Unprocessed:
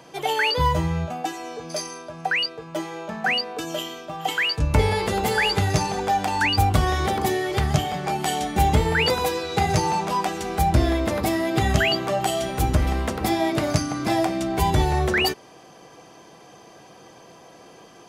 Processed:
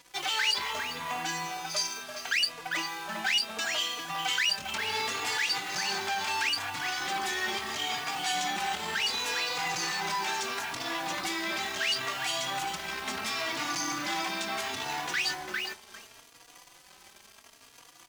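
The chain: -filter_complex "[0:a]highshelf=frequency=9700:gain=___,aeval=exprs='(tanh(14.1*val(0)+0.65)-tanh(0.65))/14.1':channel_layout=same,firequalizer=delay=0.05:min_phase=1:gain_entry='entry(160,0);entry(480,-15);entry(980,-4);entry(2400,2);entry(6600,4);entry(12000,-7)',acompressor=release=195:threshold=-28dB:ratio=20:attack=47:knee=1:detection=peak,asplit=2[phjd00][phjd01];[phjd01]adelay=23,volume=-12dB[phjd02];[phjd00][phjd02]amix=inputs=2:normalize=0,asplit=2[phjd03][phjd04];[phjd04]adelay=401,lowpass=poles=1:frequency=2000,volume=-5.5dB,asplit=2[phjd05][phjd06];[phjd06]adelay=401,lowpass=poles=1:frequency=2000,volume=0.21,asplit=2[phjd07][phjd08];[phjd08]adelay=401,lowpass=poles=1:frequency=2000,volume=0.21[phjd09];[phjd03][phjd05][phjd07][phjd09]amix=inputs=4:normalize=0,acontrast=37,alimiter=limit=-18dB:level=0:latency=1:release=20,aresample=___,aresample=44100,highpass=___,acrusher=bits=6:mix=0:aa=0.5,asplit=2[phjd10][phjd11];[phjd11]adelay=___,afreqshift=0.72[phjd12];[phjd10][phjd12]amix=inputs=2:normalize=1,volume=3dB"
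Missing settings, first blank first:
-8.5, 32000, 430, 3.6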